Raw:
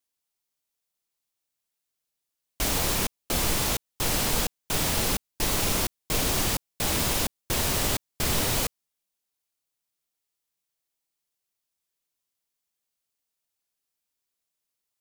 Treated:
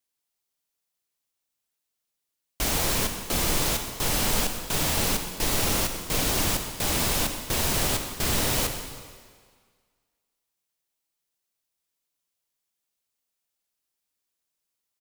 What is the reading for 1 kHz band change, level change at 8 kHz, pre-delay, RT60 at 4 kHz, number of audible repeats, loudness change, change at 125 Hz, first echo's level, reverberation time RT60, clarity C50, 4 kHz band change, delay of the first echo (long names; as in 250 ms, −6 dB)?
+1.0 dB, +1.0 dB, 31 ms, 1.6 s, 1, +1.0 dB, +0.5 dB, −16.5 dB, 1.7 s, 6.5 dB, +1.0 dB, 128 ms